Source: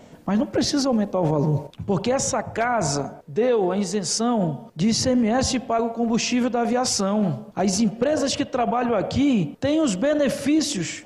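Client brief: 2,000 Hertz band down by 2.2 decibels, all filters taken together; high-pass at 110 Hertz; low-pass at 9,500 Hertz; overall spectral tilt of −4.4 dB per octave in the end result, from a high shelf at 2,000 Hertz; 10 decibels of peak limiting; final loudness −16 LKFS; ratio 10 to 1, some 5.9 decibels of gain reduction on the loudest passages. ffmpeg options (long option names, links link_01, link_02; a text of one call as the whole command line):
ffmpeg -i in.wav -af "highpass=110,lowpass=9500,highshelf=frequency=2000:gain=4,equalizer=frequency=2000:width_type=o:gain=-5.5,acompressor=threshold=-22dB:ratio=10,volume=15.5dB,alimiter=limit=-8dB:level=0:latency=1" out.wav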